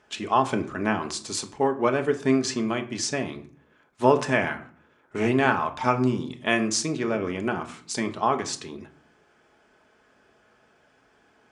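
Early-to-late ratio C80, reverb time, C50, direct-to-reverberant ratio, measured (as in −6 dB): 18.0 dB, 0.50 s, 14.5 dB, 5.5 dB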